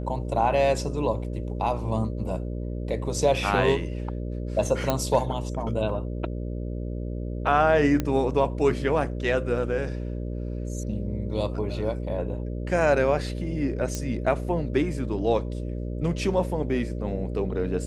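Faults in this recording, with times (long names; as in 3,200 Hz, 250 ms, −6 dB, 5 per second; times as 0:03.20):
mains buzz 60 Hz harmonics 10 −31 dBFS
0:04.90: click −9 dBFS
0:08.00: click −12 dBFS
0:13.95: click −15 dBFS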